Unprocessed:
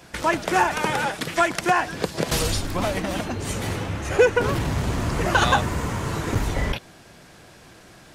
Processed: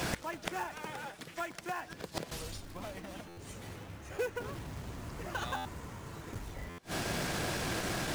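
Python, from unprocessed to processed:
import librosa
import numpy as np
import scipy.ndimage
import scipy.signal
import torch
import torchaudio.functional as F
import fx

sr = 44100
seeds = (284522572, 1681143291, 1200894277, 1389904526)

y = fx.quant_float(x, sr, bits=2)
y = fx.gate_flip(y, sr, shuts_db=-22.0, range_db=-32)
y = fx.buffer_glitch(y, sr, at_s=(3.28, 5.56, 6.69), block=512, repeats=7)
y = fx.transformer_sat(y, sr, knee_hz=950.0)
y = y * librosa.db_to_amplitude(13.5)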